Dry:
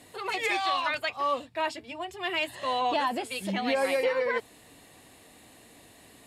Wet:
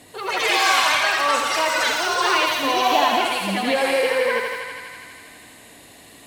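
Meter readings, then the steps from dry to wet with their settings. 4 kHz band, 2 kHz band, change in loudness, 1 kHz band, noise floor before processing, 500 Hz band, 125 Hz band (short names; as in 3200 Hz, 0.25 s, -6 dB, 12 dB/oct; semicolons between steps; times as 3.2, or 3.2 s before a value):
+13.0 dB, +11.5 dB, +10.0 dB, +9.5 dB, -55 dBFS, +7.0 dB, n/a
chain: thinning echo 81 ms, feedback 83%, high-pass 400 Hz, level -4 dB; echoes that change speed 0.169 s, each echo +6 st, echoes 3; gain +5.5 dB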